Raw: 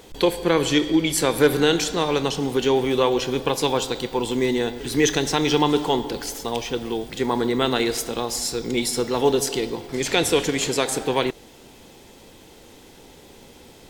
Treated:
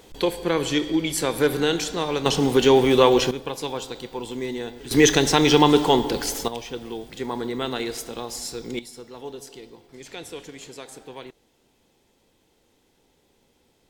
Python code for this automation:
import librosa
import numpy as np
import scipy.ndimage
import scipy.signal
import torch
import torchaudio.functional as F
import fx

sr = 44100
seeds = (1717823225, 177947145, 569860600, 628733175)

y = fx.gain(x, sr, db=fx.steps((0.0, -3.5), (2.26, 4.0), (3.31, -8.0), (4.91, 3.5), (6.48, -6.5), (8.79, -17.5)))